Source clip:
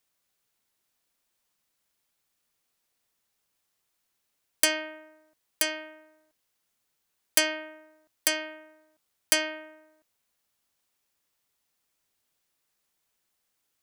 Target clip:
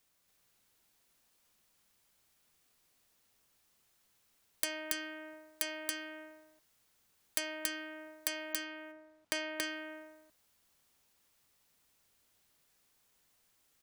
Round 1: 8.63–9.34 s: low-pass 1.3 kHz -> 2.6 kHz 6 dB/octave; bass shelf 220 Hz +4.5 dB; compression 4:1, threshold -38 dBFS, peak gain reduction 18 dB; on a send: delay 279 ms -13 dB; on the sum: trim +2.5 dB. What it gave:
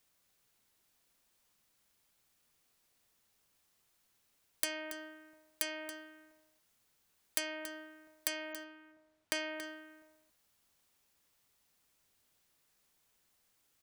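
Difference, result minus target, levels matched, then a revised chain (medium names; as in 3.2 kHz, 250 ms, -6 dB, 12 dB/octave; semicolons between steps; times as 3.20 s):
echo-to-direct -11.5 dB
8.63–9.34 s: low-pass 1.3 kHz -> 2.6 kHz 6 dB/octave; bass shelf 220 Hz +4.5 dB; compression 4:1, threshold -38 dBFS, peak gain reduction 18 dB; on a send: delay 279 ms -1.5 dB; on the sum: trim +2.5 dB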